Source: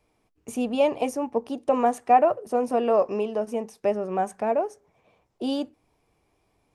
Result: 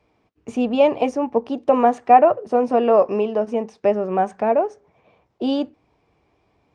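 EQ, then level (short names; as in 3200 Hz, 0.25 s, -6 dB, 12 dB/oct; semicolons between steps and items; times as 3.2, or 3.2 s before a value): Gaussian blur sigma 1.6 samples; HPF 50 Hz; +6.0 dB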